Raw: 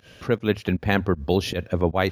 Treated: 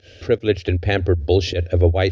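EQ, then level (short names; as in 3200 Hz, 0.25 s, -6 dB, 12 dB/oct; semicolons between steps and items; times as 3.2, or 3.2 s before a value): Chebyshev low-pass 5600 Hz, order 3; bell 86 Hz +10.5 dB 0.31 oct; fixed phaser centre 430 Hz, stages 4; +6.0 dB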